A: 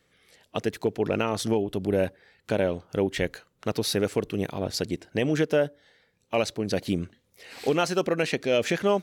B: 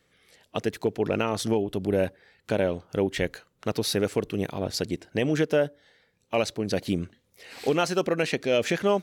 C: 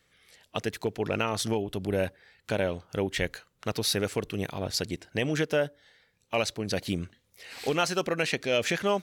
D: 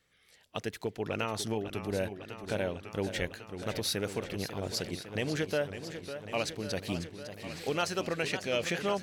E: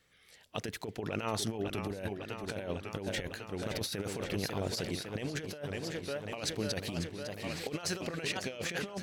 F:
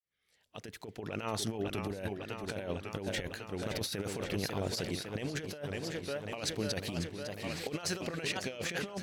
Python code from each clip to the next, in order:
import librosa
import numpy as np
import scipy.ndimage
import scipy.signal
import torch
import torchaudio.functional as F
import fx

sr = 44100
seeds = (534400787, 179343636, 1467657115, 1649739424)

y1 = x
y2 = fx.peak_eq(y1, sr, hz=320.0, db=-6.5, octaves=2.7)
y2 = y2 * 10.0 ** (1.5 / 20.0)
y3 = fx.echo_warbled(y2, sr, ms=550, feedback_pct=74, rate_hz=2.8, cents=138, wet_db=-10.5)
y3 = y3 * 10.0 ** (-5.0 / 20.0)
y4 = fx.over_compress(y3, sr, threshold_db=-35.0, ratio=-0.5)
y5 = fx.fade_in_head(y4, sr, length_s=1.57)